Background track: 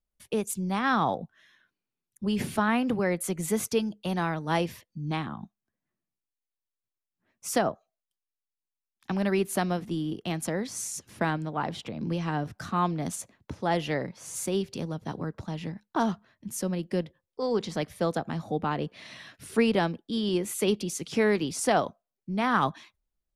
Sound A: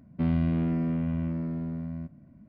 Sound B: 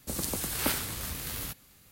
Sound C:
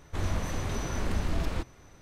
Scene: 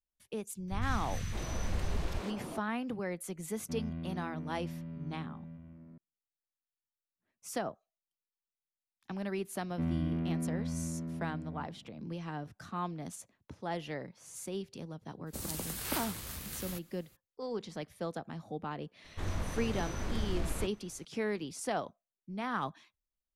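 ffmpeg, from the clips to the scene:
ffmpeg -i bed.wav -i cue0.wav -i cue1.wav -i cue2.wav -filter_complex "[3:a]asplit=2[link_01][link_02];[1:a]asplit=2[link_03][link_04];[0:a]volume=-10.5dB[link_05];[link_01]acrossover=split=240|1300[link_06][link_07][link_08];[link_08]adelay=100[link_09];[link_07]adelay=610[link_10];[link_06][link_10][link_09]amix=inputs=3:normalize=0[link_11];[link_03]aecho=1:1:948:0.398[link_12];[link_11]atrim=end=2.01,asetpts=PTS-STARTPTS,volume=-4dB,afade=type=in:duration=0.004:curve=hsin,afade=type=out:start_time=2.006:duration=0.004:curve=hsin,adelay=580[link_13];[link_12]atrim=end=2.48,asetpts=PTS-STARTPTS,volume=-14dB,afade=type=in:duration=0.004:curve=hsin,afade=type=out:start_time=2.476:duration=0.004:curve=hsin,adelay=3500[link_14];[link_04]atrim=end=2.48,asetpts=PTS-STARTPTS,volume=-7.5dB,afade=type=in:duration=0.004:curve=hsin,afade=type=out:start_time=2.476:duration=0.004:curve=hsin,adelay=9590[link_15];[2:a]atrim=end=1.91,asetpts=PTS-STARTPTS,volume=-6.5dB,afade=type=in:duration=0.02,afade=type=out:start_time=1.89:duration=0.02,adelay=15260[link_16];[link_02]atrim=end=2.01,asetpts=PTS-STARTPTS,volume=-5.5dB,afade=type=in:duration=0.004:curve=hsin,afade=type=out:start_time=2.006:duration=0.004:curve=hsin,adelay=19040[link_17];[link_05][link_13][link_14][link_15][link_16][link_17]amix=inputs=6:normalize=0" out.wav

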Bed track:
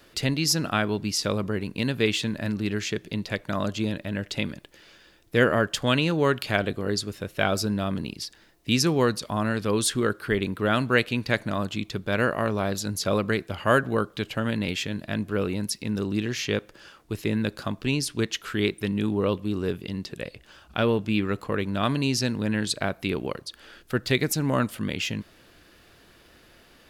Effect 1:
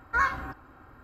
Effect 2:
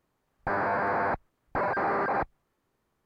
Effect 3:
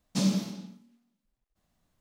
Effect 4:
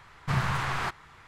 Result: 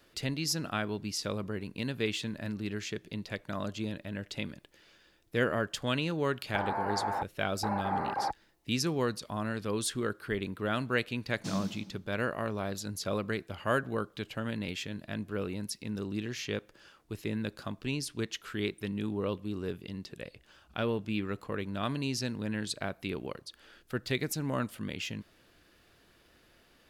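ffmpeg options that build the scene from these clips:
ffmpeg -i bed.wav -i cue0.wav -i cue1.wav -i cue2.wav -filter_complex "[0:a]volume=-8.5dB[link_01];[2:a]equalizer=frequency=840:width_type=o:width=0.24:gain=14,atrim=end=3.05,asetpts=PTS-STARTPTS,volume=-11dB,afade=type=in:duration=0.004:curve=hsin,afade=type=out:start_time=3.046:duration=0.004:curve=hsin,adelay=6080[link_02];[3:a]atrim=end=2,asetpts=PTS-STARTPTS,volume=-9dB,afade=type=in:duration=0.004:curve=hsin,afade=type=out:start_time=1.996:duration=0.004:curve=hsin,adelay=11290[link_03];[link_01][link_02][link_03]amix=inputs=3:normalize=0" out.wav

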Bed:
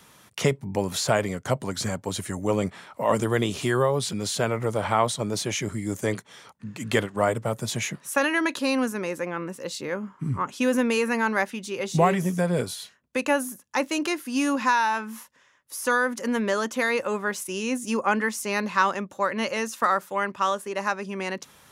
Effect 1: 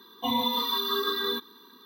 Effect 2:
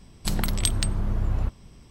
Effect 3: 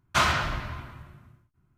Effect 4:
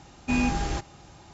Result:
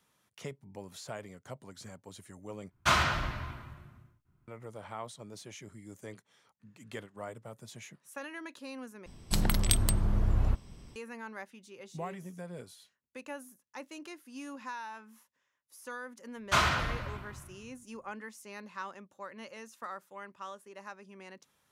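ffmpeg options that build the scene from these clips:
ffmpeg -i bed.wav -i cue0.wav -i cue1.wav -i cue2.wav -filter_complex "[3:a]asplit=2[link_01][link_02];[0:a]volume=-19.5dB[link_03];[2:a]aeval=exprs='(mod(1.78*val(0)+1,2)-1)/1.78':channel_layout=same[link_04];[link_03]asplit=3[link_05][link_06][link_07];[link_05]atrim=end=2.714[link_08];[link_01]atrim=end=1.77,asetpts=PTS-STARTPTS,volume=-3dB[link_09];[link_06]atrim=start=4.476:end=9.064[link_10];[link_04]atrim=end=1.9,asetpts=PTS-STARTPTS,volume=-2dB[link_11];[link_07]atrim=start=10.956[link_12];[link_02]atrim=end=1.77,asetpts=PTS-STARTPTS,volume=-3.5dB,afade=type=in:duration=0.004:curve=hsin,afade=type=out:start_time=1.766:duration=0.004:curve=hsin,adelay=16370[link_13];[link_08][link_09]acrossfade=duration=0.004:curve1=hsin:curve2=hsin[link_14];[link_14][link_10]acrossfade=duration=0.004:curve1=hsin:curve2=hsin[link_15];[link_15][link_11]acrossfade=duration=0.004:curve1=hsin:curve2=hsin[link_16];[link_16][link_12]acrossfade=duration=0.004:curve1=hsin:curve2=hsin[link_17];[link_17][link_13]amix=inputs=2:normalize=0" out.wav

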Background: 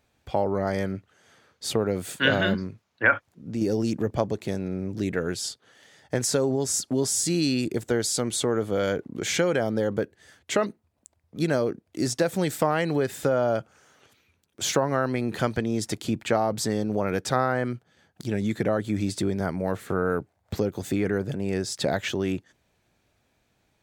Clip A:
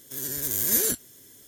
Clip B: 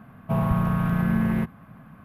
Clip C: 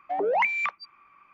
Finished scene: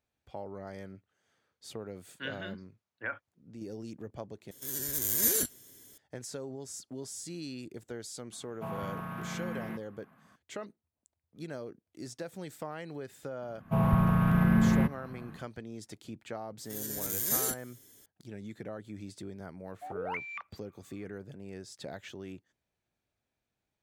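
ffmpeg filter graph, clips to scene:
ffmpeg -i bed.wav -i cue0.wav -i cue1.wav -i cue2.wav -filter_complex "[1:a]asplit=2[link_01][link_02];[2:a]asplit=2[link_03][link_04];[0:a]volume=-17dB[link_05];[link_03]highpass=frequency=440:poles=1[link_06];[link_04]dynaudnorm=framelen=110:gausssize=5:maxgain=11.5dB[link_07];[link_05]asplit=2[link_08][link_09];[link_08]atrim=end=4.514[link_10];[link_01]atrim=end=1.47,asetpts=PTS-STARTPTS,volume=-4dB[link_11];[link_09]atrim=start=5.976[link_12];[link_06]atrim=end=2.04,asetpts=PTS-STARTPTS,volume=-9dB,afade=type=in:duration=0.004:curve=hsin,afade=type=out:start_time=2.036:duration=0.004:curve=hsin,adelay=8320[link_13];[link_07]atrim=end=2.04,asetpts=PTS-STARTPTS,volume=-10.5dB,afade=type=in:duration=0.004:curve=hsin,afade=type=out:start_time=2.036:duration=0.004:curve=hsin,adelay=13420[link_14];[link_02]atrim=end=1.47,asetpts=PTS-STARTPTS,volume=-7dB,afade=type=in:duration=0.004:curve=hsin,afade=type=out:start_time=1.466:duration=0.004:curve=hsin,adelay=16590[link_15];[3:a]atrim=end=1.33,asetpts=PTS-STARTPTS,volume=-14dB,afade=type=in:duration=0.004:curve=hsin,afade=type=out:start_time=1.326:duration=0.004:curve=hsin,adelay=869652S[link_16];[link_10][link_11]acrossfade=duration=0.004:curve1=hsin:curve2=hsin[link_17];[link_17][link_12]acrossfade=duration=0.004:curve1=hsin:curve2=hsin[link_18];[link_18][link_13][link_14][link_15][link_16]amix=inputs=5:normalize=0" out.wav

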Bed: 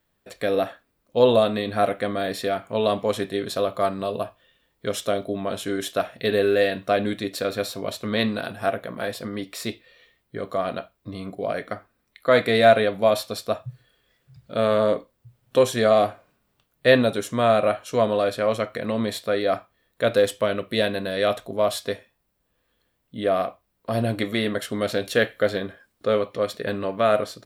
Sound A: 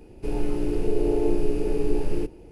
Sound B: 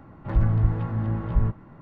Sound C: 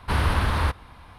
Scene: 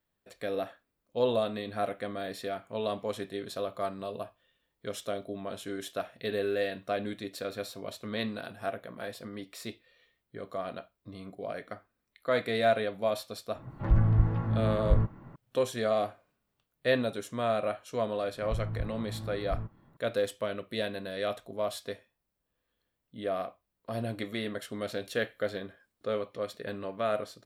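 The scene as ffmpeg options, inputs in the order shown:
ffmpeg -i bed.wav -i cue0.wav -i cue1.wav -filter_complex "[2:a]asplit=2[link_01][link_02];[0:a]volume=-10.5dB[link_03];[link_01]atrim=end=1.81,asetpts=PTS-STARTPTS,volume=-2.5dB,afade=type=in:duration=0.004:curve=hsin,afade=type=out:start_time=1.806:duration=0.004:curve=hsin,adelay=13550[link_04];[link_02]atrim=end=1.81,asetpts=PTS-STARTPTS,volume=-13.5dB,afade=type=in:duration=0.004:curve=hsin,afade=type=out:start_time=1.806:duration=0.004:curve=hsin,adelay=18160[link_05];[link_03][link_04][link_05]amix=inputs=3:normalize=0" out.wav

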